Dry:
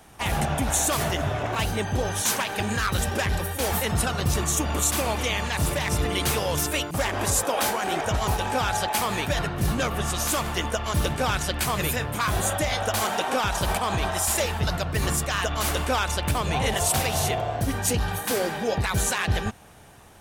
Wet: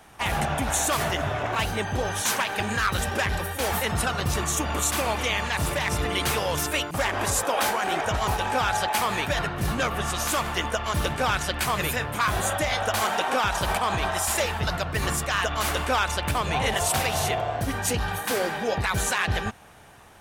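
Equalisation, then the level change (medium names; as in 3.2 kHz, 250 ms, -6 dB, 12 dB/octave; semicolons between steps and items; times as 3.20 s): peaking EQ 1.5 kHz +5.5 dB 2.8 oct; -3.0 dB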